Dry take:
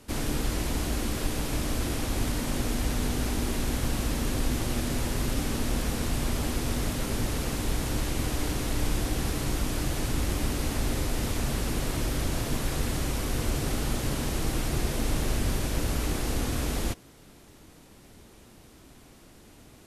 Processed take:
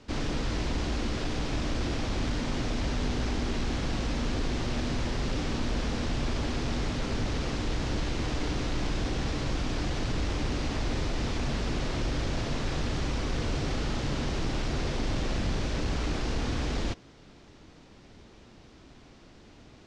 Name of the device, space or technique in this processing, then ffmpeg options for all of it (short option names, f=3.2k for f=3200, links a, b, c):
synthesiser wavefolder: -af "aeval=exprs='0.0708*(abs(mod(val(0)/0.0708+3,4)-2)-1)':c=same,lowpass=f=5.8k:w=0.5412,lowpass=f=5.8k:w=1.3066"